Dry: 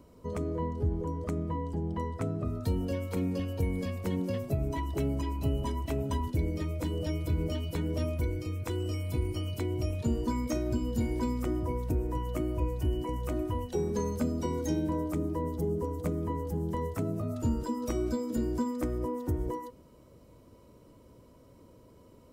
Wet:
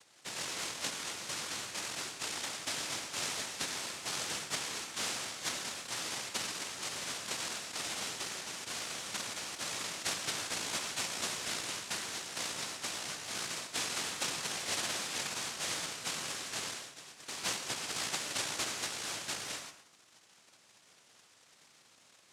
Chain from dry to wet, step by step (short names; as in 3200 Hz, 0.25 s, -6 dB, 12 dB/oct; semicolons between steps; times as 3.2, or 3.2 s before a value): 16.73–17.28 HPF 840 Hz 12 dB/oct; noise vocoder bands 1; reverb RT60 0.55 s, pre-delay 82 ms, DRR 10.5 dB; gain -6 dB